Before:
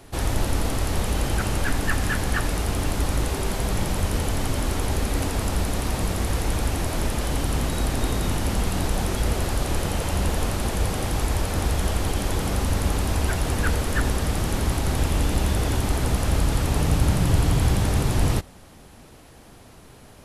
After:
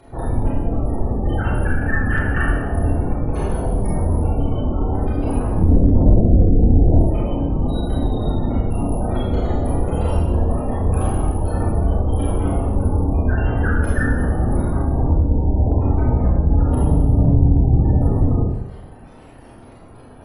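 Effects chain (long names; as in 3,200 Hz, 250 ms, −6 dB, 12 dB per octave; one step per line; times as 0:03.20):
0:05.57–0:06.97: tilt shelving filter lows +8.5 dB, about 1,200 Hz
gate on every frequency bin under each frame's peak −20 dB strong
four-comb reverb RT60 1 s, combs from 25 ms, DRR −7.5 dB
in parallel at −7 dB: asymmetric clip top −7.5 dBFS, bottom −0.5 dBFS
on the sum: level −4.5 dB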